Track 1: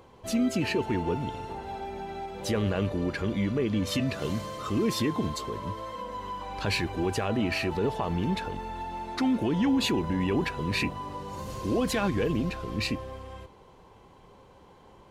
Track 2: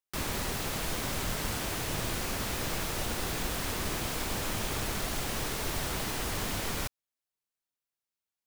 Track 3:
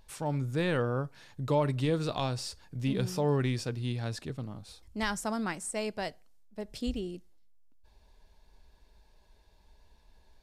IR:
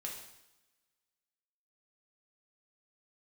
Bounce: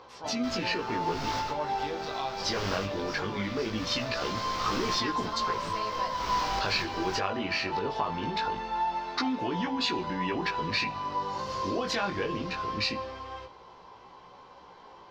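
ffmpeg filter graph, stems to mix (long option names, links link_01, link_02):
-filter_complex "[0:a]volume=3dB,asplit=2[link_01][link_02];[link_02]volume=-17dB[link_03];[1:a]asoftclip=type=hard:threshold=-30dB,adelay=300,volume=0.5dB[link_04];[2:a]lowshelf=frequency=140:gain=-8.5,volume=-3.5dB,asplit=2[link_05][link_06];[link_06]apad=whole_len=386729[link_07];[link_04][link_07]sidechaincompress=threshold=-44dB:ratio=10:attack=16:release=311[link_08];[link_01][link_05]amix=inputs=2:normalize=0,lowshelf=frequency=230:gain=-11,acompressor=threshold=-28dB:ratio=6,volume=0dB[link_09];[3:a]atrim=start_sample=2205[link_10];[link_03][link_10]afir=irnorm=-1:irlink=0[link_11];[link_08][link_09][link_11]amix=inputs=3:normalize=0,highshelf=frequency=7200:width_type=q:width=3:gain=-13,flanger=delay=16:depth=5.2:speed=0.21,equalizer=frequency=1100:width=0.93:gain=7"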